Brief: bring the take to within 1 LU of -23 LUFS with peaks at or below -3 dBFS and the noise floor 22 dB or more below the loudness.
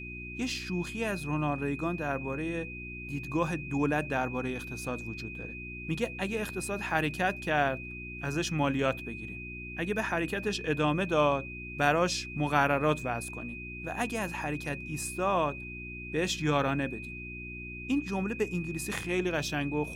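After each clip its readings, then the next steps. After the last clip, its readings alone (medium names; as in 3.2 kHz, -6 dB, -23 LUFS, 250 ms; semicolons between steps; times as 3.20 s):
hum 60 Hz; highest harmonic 360 Hz; hum level -41 dBFS; steady tone 2.5 kHz; tone level -41 dBFS; loudness -31.5 LUFS; peak level -9.5 dBFS; loudness target -23.0 LUFS
-> de-hum 60 Hz, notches 6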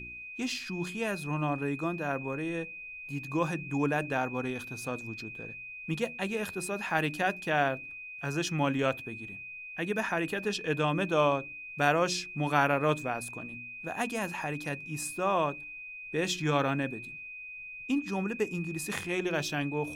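hum not found; steady tone 2.5 kHz; tone level -41 dBFS
-> band-stop 2.5 kHz, Q 30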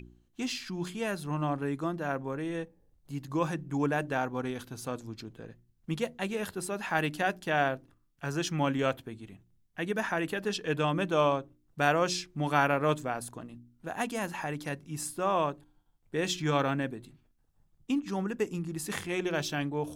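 steady tone not found; loudness -32.0 LUFS; peak level -9.5 dBFS; loudness target -23.0 LUFS
-> trim +9 dB; peak limiter -3 dBFS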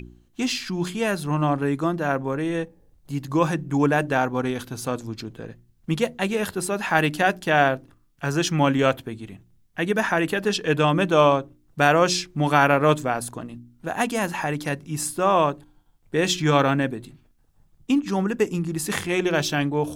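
loudness -23.0 LUFS; peak level -3.0 dBFS; noise floor -61 dBFS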